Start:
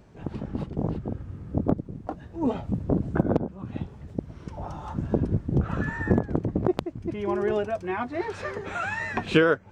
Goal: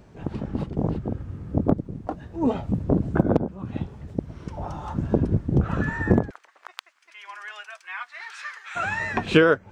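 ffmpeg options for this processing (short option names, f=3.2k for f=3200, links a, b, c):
-filter_complex "[0:a]asplit=3[a][b][c];[a]afade=t=out:st=6.29:d=0.02[d];[b]highpass=f=1.3k:w=0.5412,highpass=f=1.3k:w=1.3066,afade=t=in:st=6.29:d=0.02,afade=t=out:st=8.75:d=0.02[e];[c]afade=t=in:st=8.75:d=0.02[f];[d][e][f]amix=inputs=3:normalize=0,volume=3dB"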